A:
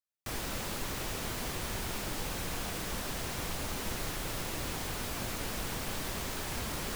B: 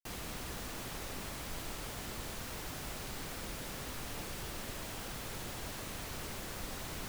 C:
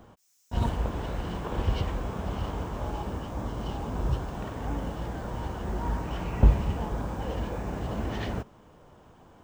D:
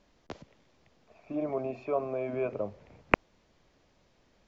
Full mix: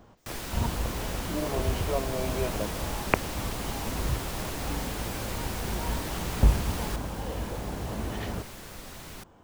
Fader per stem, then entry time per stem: 0.0, −1.0, −2.0, −0.5 decibels; 0.00, 2.15, 0.00, 0.00 seconds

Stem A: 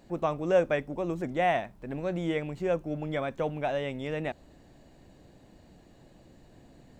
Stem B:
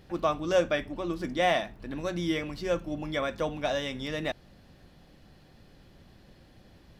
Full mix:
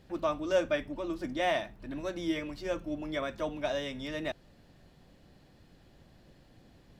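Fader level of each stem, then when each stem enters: −9.0, −5.0 decibels; 0.00, 0.00 seconds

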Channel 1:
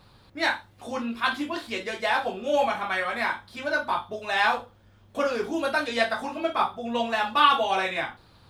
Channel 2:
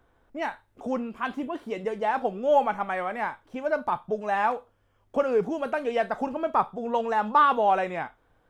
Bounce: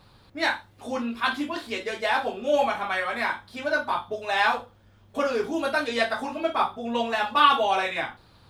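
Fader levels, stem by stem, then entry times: 0.0, −10.5 decibels; 0.00, 0.00 seconds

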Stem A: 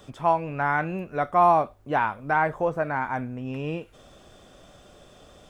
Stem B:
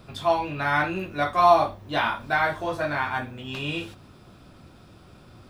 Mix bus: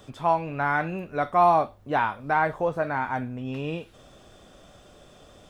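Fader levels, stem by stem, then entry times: −0.5, −14.5 decibels; 0.00, 0.00 seconds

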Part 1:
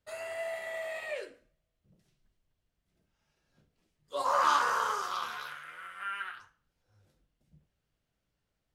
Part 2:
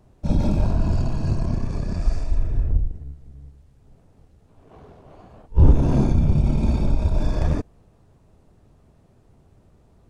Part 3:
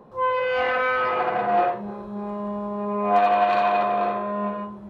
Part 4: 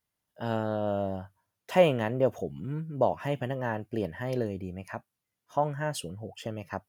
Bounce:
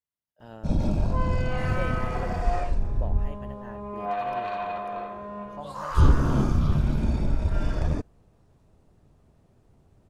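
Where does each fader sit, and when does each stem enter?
−7.0, −4.5, −10.5, −14.0 decibels; 1.50, 0.40, 0.95, 0.00 seconds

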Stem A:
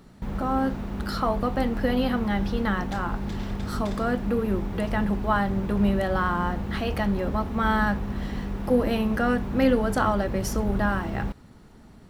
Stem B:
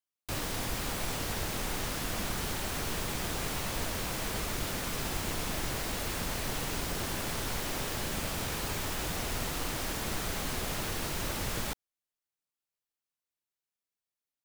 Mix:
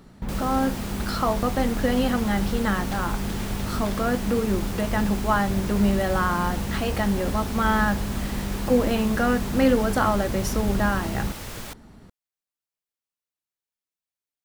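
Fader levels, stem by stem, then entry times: +1.5, −2.0 decibels; 0.00, 0.00 seconds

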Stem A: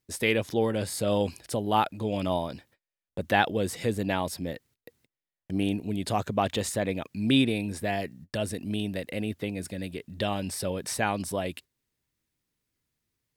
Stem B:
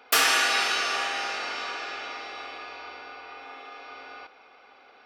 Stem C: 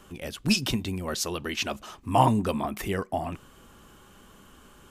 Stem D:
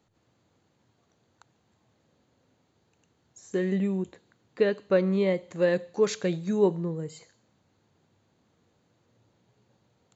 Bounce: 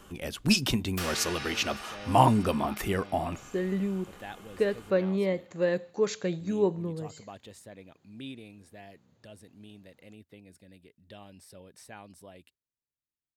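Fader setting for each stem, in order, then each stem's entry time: −19.5, −15.0, 0.0, −3.0 decibels; 0.90, 0.85, 0.00, 0.00 seconds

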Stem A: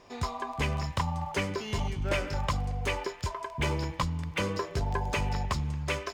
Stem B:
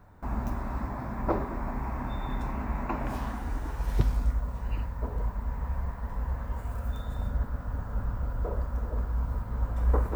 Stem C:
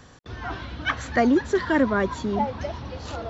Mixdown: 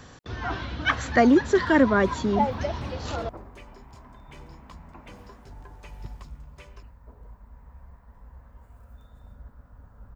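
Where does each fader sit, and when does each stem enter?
−18.5, −16.0, +2.0 decibels; 0.70, 2.05, 0.00 seconds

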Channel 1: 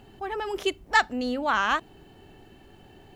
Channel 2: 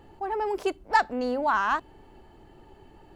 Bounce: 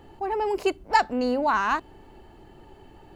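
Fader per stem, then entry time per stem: −10.0, +2.5 decibels; 0.00, 0.00 seconds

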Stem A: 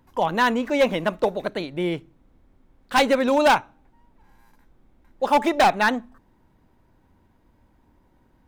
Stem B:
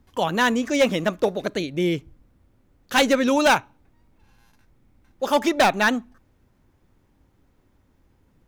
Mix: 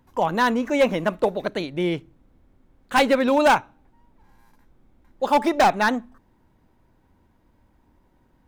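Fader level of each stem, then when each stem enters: −1.0, −13.0 decibels; 0.00, 0.00 seconds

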